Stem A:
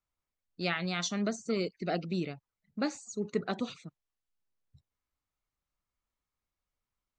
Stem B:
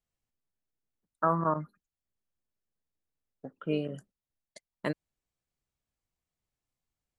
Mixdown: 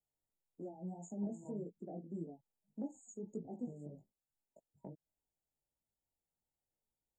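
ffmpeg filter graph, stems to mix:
ffmpeg -i stem1.wav -i stem2.wav -filter_complex "[0:a]highpass=240,volume=0.5dB[link_01];[1:a]lowpass=frequency=4700:width=0.5412,lowpass=frequency=4700:width=1.3066,acompressor=threshold=-33dB:ratio=6,volume=-5dB[link_02];[link_01][link_02]amix=inputs=2:normalize=0,afftfilt=real='re*(1-between(b*sr/4096,950,6600))':imag='im*(1-between(b*sr/4096,950,6600))':win_size=4096:overlap=0.75,acrossover=split=270[link_03][link_04];[link_04]acompressor=threshold=-49dB:ratio=5[link_05];[link_03][link_05]amix=inputs=2:normalize=0,flanger=delay=18:depth=3.4:speed=1.7" out.wav

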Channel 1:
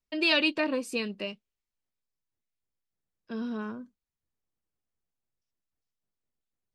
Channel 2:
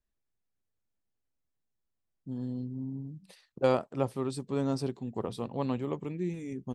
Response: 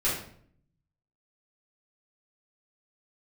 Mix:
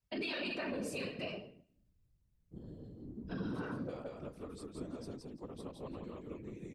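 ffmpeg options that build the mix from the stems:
-filter_complex "[0:a]acompressor=threshold=-39dB:ratio=1.5,volume=0.5dB,asplit=2[link_01][link_02];[link_02]volume=-8dB[link_03];[1:a]equalizer=frequency=860:width=4.6:gain=-7.5,acompressor=threshold=-32dB:ratio=6,adelay=250,volume=-4dB,asplit=2[link_04][link_05];[link_05]volume=-3dB[link_06];[2:a]atrim=start_sample=2205[link_07];[link_03][link_07]afir=irnorm=-1:irlink=0[link_08];[link_06]aecho=0:1:170|340|510:1|0.18|0.0324[link_09];[link_01][link_04][link_08][link_09]amix=inputs=4:normalize=0,bandreject=frequency=50:width_type=h:width=6,bandreject=frequency=100:width_type=h:width=6,bandreject=frequency=150:width_type=h:width=6,bandreject=frequency=200:width_type=h:width=6,bandreject=frequency=250:width_type=h:width=6,bandreject=frequency=300:width_type=h:width=6,bandreject=frequency=350:width_type=h:width=6,bandreject=frequency=400:width_type=h:width=6,afftfilt=real='hypot(re,im)*cos(2*PI*random(0))':imag='hypot(re,im)*sin(2*PI*random(1))':win_size=512:overlap=0.75,alimiter=level_in=6.5dB:limit=-24dB:level=0:latency=1:release=36,volume=-6.5dB"

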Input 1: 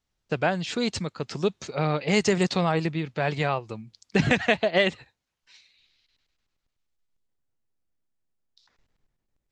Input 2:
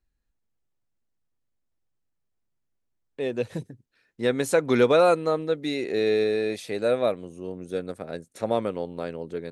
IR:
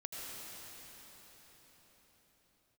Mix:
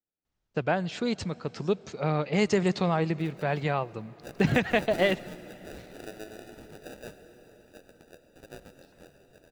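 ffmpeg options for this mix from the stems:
-filter_complex "[0:a]highshelf=frequency=2400:gain=-7,adelay=250,volume=-2dB,asplit=2[link_01][link_02];[link_02]volume=-20.5dB[link_03];[1:a]highpass=1400,acrusher=samples=41:mix=1:aa=0.000001,volume=-10.5dB,asplit=2[link_04][link_05];[link_05]volume=-5.5dB[link_06];[2:a]atrim=start_sample=2205[link_07];[link_03][link_06]amix=inputs=2:normalize=0[link_08];[link_08][link_07]afir=irnorm=-1:irlink=0[link_09];[link_01][link_04][link_09]amix=inputs=3:normalize=0"

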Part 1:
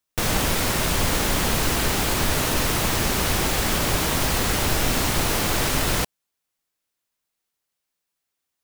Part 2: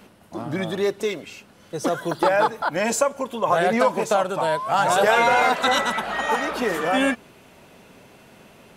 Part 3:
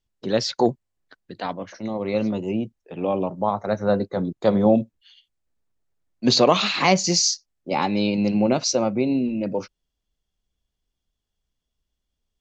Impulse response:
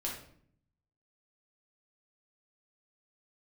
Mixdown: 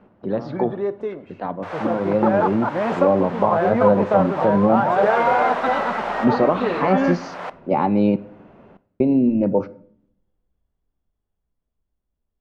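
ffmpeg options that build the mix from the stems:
-filter_complex "[0:a]highpass=frequency=570:width=0.5412,highpass=frequency=570:width=1.3066,adelay=1450,volume=0dB,asplit=2[link_01][link_02];[link_02]volume=-18.5dB[link_03];[1:a]volume=-3.5dB,asplit=2[link_04][link_05];[link_05]volume=-15dB[link_06];[2:a]alimiter=limit=-12dB:level=0:latency=1:release=402,volume=0.5dB,asplit=3[link_07][link_08][link_09];[link_07]atrim=end=8.16,asetpts=PTS-STARTPTS,afade=type=out:start_time=8.156:duration=0.004:curve=hsin[link_10];[link_08]atrim=start=8.16:end=9,asetpts=PTS-STARTPTS,volume=0[link_11];[link_09]atrim=start=9,asetpts=PTS-STARTPTS,afade=type=in:duration=0.004:curve=hsin[link_12];[link_10][link_11][link_12]concat=n=3:v=0:a=1,asplit=3[link_13][link_14][link_15];[link_14]volume=-15.5dB[link_16];[link_15]apad=whole_len=444883[link_17];[link_01][link_17]sidechaincompress=threshold=-31dB:ratio=8:attack=33:release=353[link_18];[3:a]atrim=start_sample=2205[link_19];[link_03][link_06][link_16]amix=inputs=3:normalize=0[link_20];[link_20][link_19]afir=irnorm=-1:irlink=0[link_21];[link_18][link_04][link_13][link_21]amix=inputs=4:normalize=0,dynaudnorm=framelen=380:gausssize=11:maxgain=6.5dB,lowpass=1200"

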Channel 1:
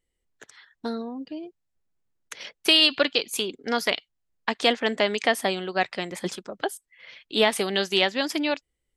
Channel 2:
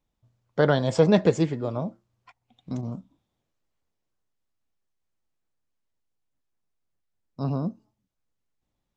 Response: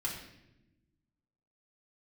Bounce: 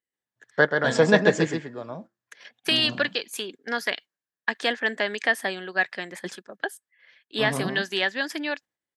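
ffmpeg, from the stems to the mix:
-filter_complex "[0:a]volume=-5dB,asplit=2[link_01][link_02];[1:a]tiltshelf=frequency=650:gain=-3,volume=1dB,asplit=2[link_03][link_04];[link_04]volume=-6dB[link_05];[link_02]apad=whole_len=395337[link_06];[link_03][link_06]sidechaingate=range=-33dB:threshold=-56dB:ratio=16:detection=peak[link_07];[link_05]aecho=0:1:133:1[link_08];[link_01][link_07][link_08]amix=inputs=3:normalize=0,agate=range=-8dB:threshold=-42dB:ratio=16:detection=peak,highpass=160,equalizer=frequency=1700:width_type=o:width=0.29:gain=13.5"

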